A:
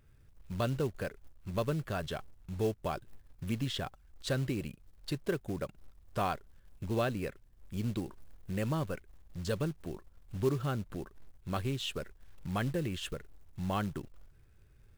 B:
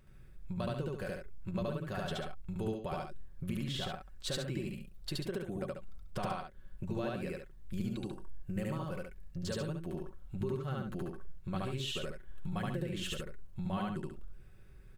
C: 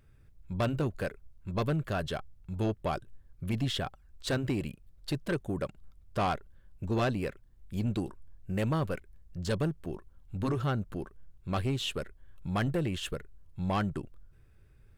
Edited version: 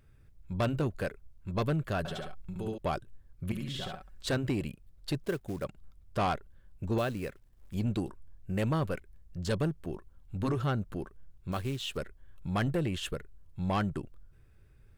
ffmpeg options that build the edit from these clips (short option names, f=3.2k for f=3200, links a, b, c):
-filter_complex "[1:a]asplit=2[a][b];[0:a]asplit=3[c][d][e];[2:a]asplit=6[f][g][h][i][j][k];[f]atrim=end=2.052[l];[a]atrim=start=2.048:end=2.782[m];[g]atrim=start=2.778:end=3.522[n];[b]atrim=start=3.518:end=4.262[o];[h]atrim=start=4.258:end=5.242[p];[c]atrim=start=5.238:end=5.642[q];[i]atrim=start=5.638:end=6.982[r];[d]atrim=start=6.978:end=7.742[s];[j]atrim=start=7.738:end=11.522[t];[e]atrim=start=11.518:end=11.972[u];[k]atrim=start=11.968[v];[l][m]acrossfade=d=0.004:c1=hsin:c2=hsin[w];[w][n]acrossfade=d=0.004:c1=hsin:c2=hsin[x];[x][o]acrossfade=d=0.004:c1=hsin:c2=hsin[y];[y][p]acrossfade=d=0.004:c1=hsin:c2=hsin[z];[z][q]acrossfade=d=0.004:c1=hsin:c2=hsin[aa];[aa][r]acrossfade=d=0.004:c1=hsin:c2=hsin[ab];[ab][s]acrossfade=d=0.004:c1=hsin:c2=hsin[ac];[ac][t]acrossfade=d=0.004:c1=hsin:c2=hsin[ad];[ad][u]acrossfade=d=0.004:c1=hsin:c2=hsin[ae];[ae][v]acrossfade=d=0.004:c1=hsin:c2=hsin"